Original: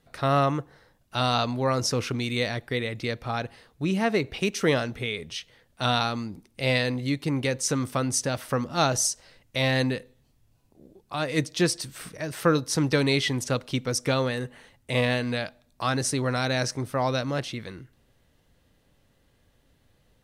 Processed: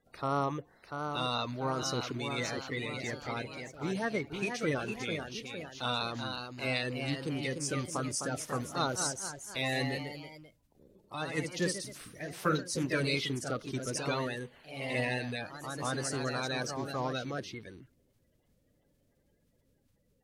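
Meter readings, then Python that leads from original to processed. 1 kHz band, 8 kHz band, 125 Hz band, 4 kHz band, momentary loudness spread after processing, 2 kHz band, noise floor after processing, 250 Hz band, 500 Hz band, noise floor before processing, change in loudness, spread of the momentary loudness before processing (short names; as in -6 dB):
-7.0 dB, -8.0 dB, -9.5 dB, -7.5 dB, 9 LU, -6.0 dB, -73 dBFS, -8.5 dB, -8.5 dB, -66 dBFS, -8.0 dB, 10 LU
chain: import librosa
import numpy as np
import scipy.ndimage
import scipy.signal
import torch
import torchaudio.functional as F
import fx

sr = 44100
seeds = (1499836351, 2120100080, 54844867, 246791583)

y = fx.spec_quant(x, sr, step_db=30)
y = fx.echo_pitch(y, sr, ms=704, semitones=1, count=3, db_per_echo=-6.0)
y = y * 10.0 ** (-8.5 / 20.0)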